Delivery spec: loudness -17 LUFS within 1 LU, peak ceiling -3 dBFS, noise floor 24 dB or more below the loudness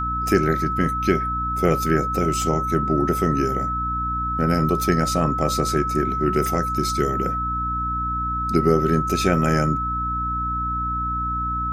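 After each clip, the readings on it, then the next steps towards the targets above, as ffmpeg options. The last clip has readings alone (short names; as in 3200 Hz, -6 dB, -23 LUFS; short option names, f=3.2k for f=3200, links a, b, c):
hum 60 Hz; harmonics up to 300 Hz; hum level -27 dBFS; steady tone 1300 Hz; tone level -23 dBFS; loudness -21.5 LUFS; peak -4.0 dBFS; loudness target -17.0 LUFS
-> -af "bandreject=f=60:t=h:w=4,bandreject=f=120:t=h:w=4,bandreject=f=180:t=h:w=4,bandreject=f=240:t=h:w=4,bandreject=f=300:t=h:w=4"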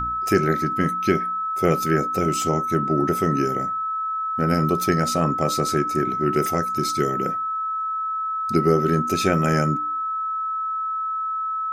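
hum none; steady tone 1300 Hz; tone level -23 dBFS
-> -af "bandreject=f=1.3k:w=30"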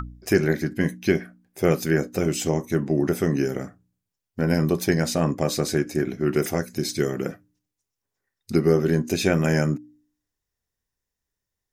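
steady tone none; loudness -24.0 LUFS; peak -5.5 dBFS; loudness target -17.0 LUFS
-> -af "volume=7dB,alimiter=limit=-3dB:level=0:latency=1"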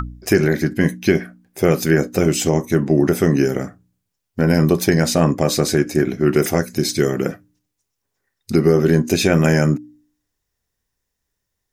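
loudness -17.5 LUFS; peak -3.0 dBFS; noise floor -78 dBFS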